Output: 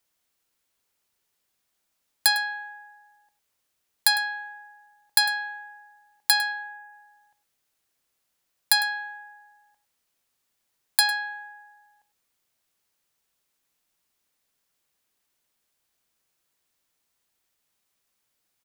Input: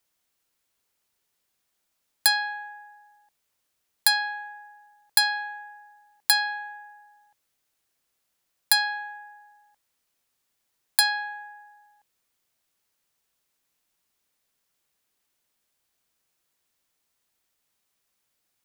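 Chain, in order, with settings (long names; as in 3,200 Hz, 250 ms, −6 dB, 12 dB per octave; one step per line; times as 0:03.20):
0:06.52–0:06.93: parametric band 3,900 Hz −7.5 dB 1 octave
on a send: single-tap delay 103 ms −16 dB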